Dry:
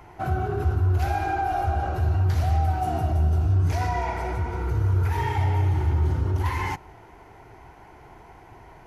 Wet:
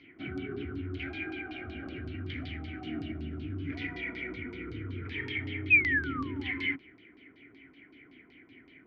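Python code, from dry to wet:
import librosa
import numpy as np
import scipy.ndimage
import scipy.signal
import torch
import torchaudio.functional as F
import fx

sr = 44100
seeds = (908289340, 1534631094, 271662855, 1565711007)

y = fx.spec_paint(x, sr, seeds[0], shape='fall', start_s=5.7, length_s=0.82, low_hz=720.0, high_hz=2600.0, level_db=-25.0)
y = fx.vowel_filter(y, sr, vowel='i')
y = fx.filter_lfo_lowpass(y, sr, shape='saw_down', hz=5.3, low_hz=960.0, high_hz=4700.0, q=4.1)
y = F.gain(torch.from_numpy(y), 6.5).numpy()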